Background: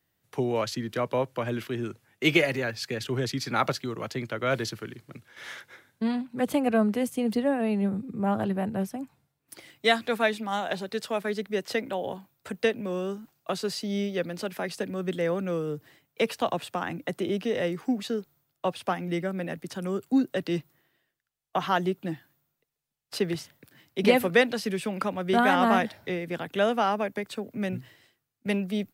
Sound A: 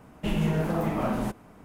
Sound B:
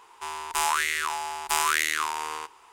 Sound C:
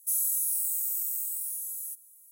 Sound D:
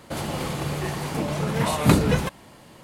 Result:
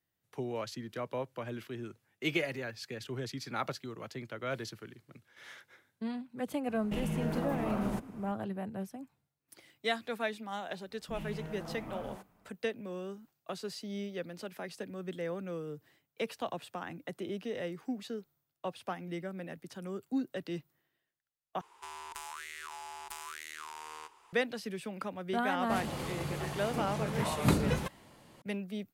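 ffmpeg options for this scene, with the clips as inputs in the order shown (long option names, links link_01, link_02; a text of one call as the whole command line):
ffmpeg -i bed.wav -i cue0.wav -i cue1.wav -i cue2.wav -i cue3.wav -filter_complex "[1:a]asplit=2[link_01][link_02];[0:a]volume=-10dB[link_03];[link_01]acompressor=threshold=-28dB:ratio=6:attack=3.2:release=140:knee=1:detection=peak[link_04];[link_02]acrossover=split=340[link_05][link_06];[link_06]adelay=60[link_07];[link_05][link_07]amix=inputs=2:normalize=0[link_08];[2:a]acompressor=threshold=-32dB:ratio=6:attack=3.2:release=140:knee=1:detection=peak[link_09];[link_03]asplit=2[link_10][link_11];[link_10]atrim=end=21.614[link_12];[link_09]atrim=end=2.72,asetpts=PTS-STARTPTS,volume=-8dB[link_13];[link_11]atrim=start=24.326[link_14];[link_04]atrim=end=1.64,asetpts=PTS-STARTPTS,volume=-2.5dB,afade=type=in:duration=0.004:curve=hsin,afade=type=out:start_time=1.636:duration=0.004:curve=hsin,adelay=6680[link_15];[link_08]atrim=end=1.64,asetpts=PTS-STARTPTS,volume=-15dB,afade=type=in:duration=0.004:curve=hsin,afade=type=out:start_time=1.636:duration=0.004:curve=hsin,adelay=10850[link_16];[4:a]atrim=end=2.83,asetpts=PTS-STARTPTS,volume=-9.5dB,afade=type=in:duration=0.004:curve=hsin,afade=type=out:start_time=2.826:duration=0.004:curve=hsin,adelay=25590[link_17];[link_12][link_13]acrossfade=duration=0.004:curve1=hsin:curve2=hsin[link_18];[link_18][link_14]acrossfade=duration=0.004:curve1=hsin:curve2=hsin[link_19];[link_19][link_15][link_16][link_17]amix=inputs=4:normalize=0" out.wav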